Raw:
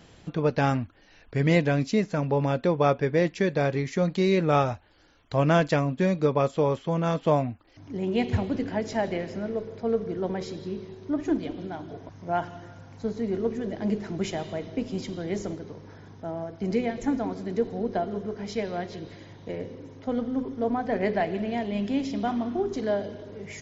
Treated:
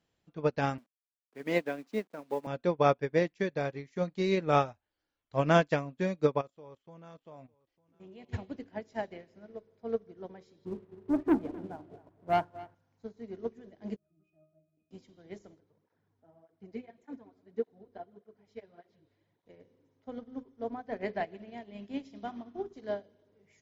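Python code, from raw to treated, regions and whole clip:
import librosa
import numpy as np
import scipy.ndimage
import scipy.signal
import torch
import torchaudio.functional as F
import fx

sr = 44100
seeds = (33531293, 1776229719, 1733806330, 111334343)

y = fx.chain(x, sr, fx.delta_hold(step_db=-38.5),
    fx.highpass(hz=220.0, slope=24),
    fx.high_shelf(hz=3400.0, db=-5.0), at=(0.78, 2.47))
y = fx.chain(y, sr, fx.level_steps(step_db=15),
    fx.echo_single(ms=903, db=-15.5), at=(6.41, 8.29))
y = fx.chain(y, sr, fx.lowpass(hz=1200.0, slope=12),
    fx.leveller(passes=2),
    fx.echo_single(ms=259, db=-9.0), at=(10.65, 12.75))
y = fx.chain(y, sr, fx.high_shelf(hz=4700.0, db=11.0),
    fx.octave_resonator(note='D#', decay_s=0.36), at=(13.96, 14.91))
y = fx.chain(y, sr, fx.lowpass(hz=3400.0, slope=6),
    fx.flanger_cancel(hz=1.7, depth_ms=6.3), at=(15.6, 19.46))
y = fx.low_shelf(y, sr, hz=200.0, db=-4.0)
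y = fx.upward_expand(y, sr, threshold_db=-36.0, expansion=2.5)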